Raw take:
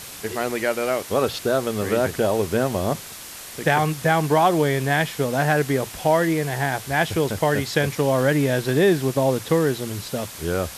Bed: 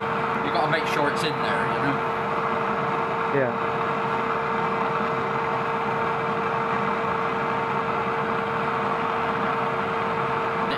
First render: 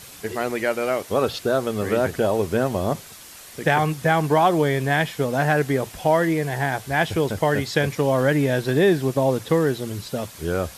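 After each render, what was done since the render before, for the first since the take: denoiser 6 dB, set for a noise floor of -38 dBFS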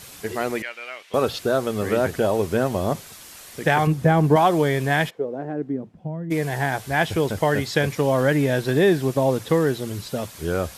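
0.62–1.14 band-pass 2600 Hz, Q 1.9; 3.87–4.36 tilt shelf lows +6.5 dB, about 720 Hz; 5.09–6.3 band-pass 510 Hz -> 130 Hz, Q 2.4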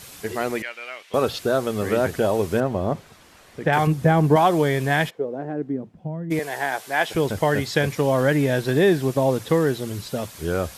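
2.6–3.73 LPF 1500 Hz 6 dB/oct; 6.39–7.15 HPF 390 Hz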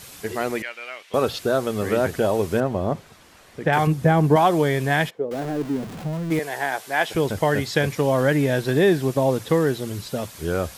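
5.31–6.39 zero-crossing step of -30.5 dBFS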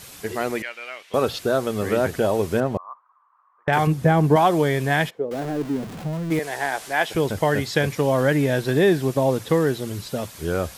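2.77–3.68 Butterworth band-pass 1100 Hz, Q 4.3; 6.44–6.93 delta modulation 64 kbps, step -32.5 dBFS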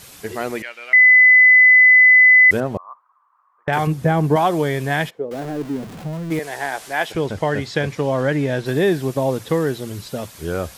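0.93–2.51 bleep 2010 Hz -6.5 dBFS; 7.12–8.66 air absorption 54 m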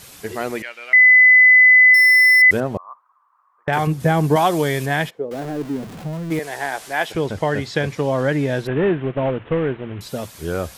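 1.94–2.42 decimation joined by straight lines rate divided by 6×; 4–4.86 high shelf 2800 Hz +7 dB; 8.67–10.01 CVSD 16 kbps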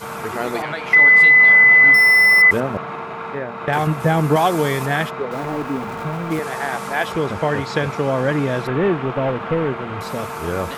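add bed -4.5 dB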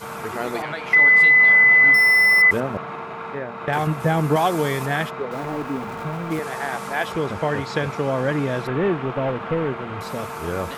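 gain -3 dB

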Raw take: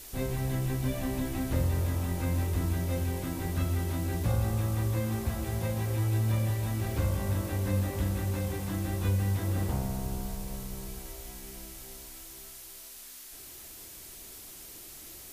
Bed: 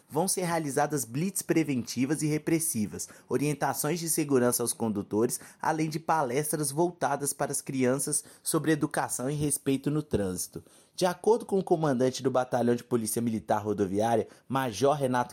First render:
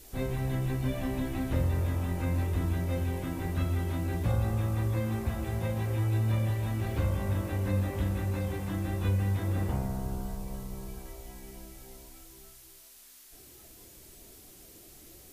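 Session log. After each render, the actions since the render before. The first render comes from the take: noise print and reduce 7 dB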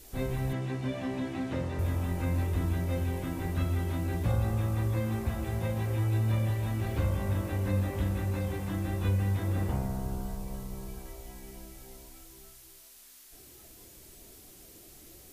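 0.53–1.79 BPF 140–6500 Hz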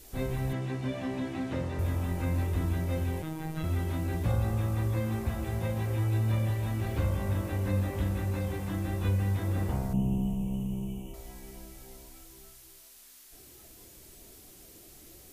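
3.22–3.64 robotiser 158 Hz; 9.93–11.14 EQ curve 100 Hz 0 dB, 160 Hz +14 dB, 470 Hz -1 dB, 950 Hz -3 dB, 1700 Hz -26 dB, 2900 Hz +11 dB, 4300 Hz -30 dB, 6200 Hz -5 dB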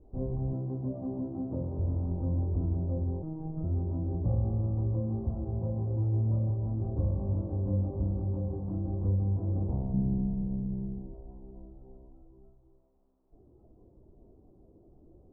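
Bessel low-pass 510 Hz, order 8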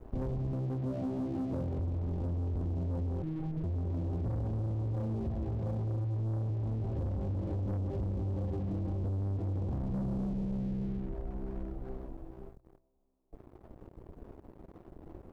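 sample leveller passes 3; compressor, threshold -33 dBFS, peak gain reduction 11 dB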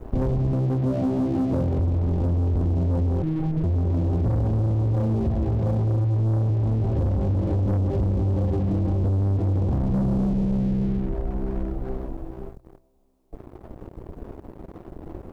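gain +11.5 dB

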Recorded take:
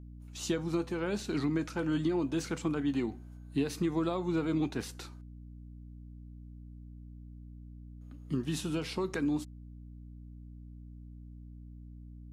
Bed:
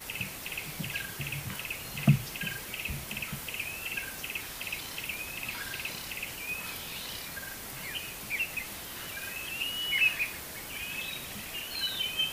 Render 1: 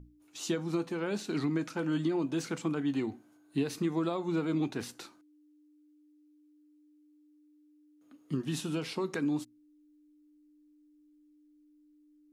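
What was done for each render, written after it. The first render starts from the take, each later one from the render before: notches 60/120/180/240 Hz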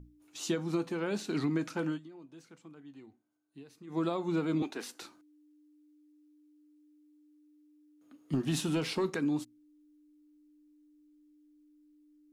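1.87–4 dip -20 dB, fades 0.13 s; 4.62–5.02 Bessel high-pass 360 Hz, order 4; 8.33–9.1 sample leveller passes 1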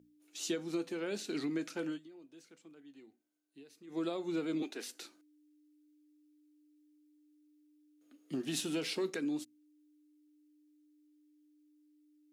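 HPF 320 Hz 12 dB/oct; bell 1000 Hz -11 dB 1.1 oct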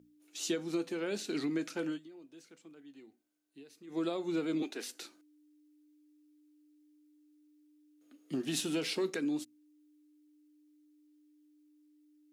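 gain +2 dB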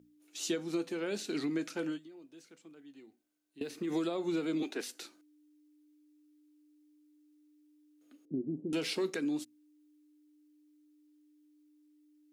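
3.61–4.81 three-band squash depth 100%; 8.25–8.73 inverse Chebyshev low-pass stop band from 1600 Hz, stop band 60 dB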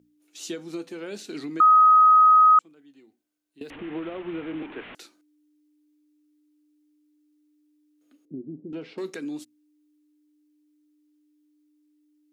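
1.6–2.59 bleep 1260 Hz -11.5 dBFS; 3.7–4.95 delta modulation 16 kbps, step -35.5 dBFS; 8.33–8.98 tape spacing loss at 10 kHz 39 dB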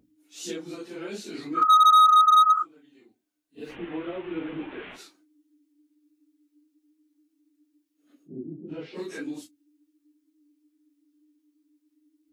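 phase scrambler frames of 0.1 s; hard clip -13 dBFS, distortion -13 dB

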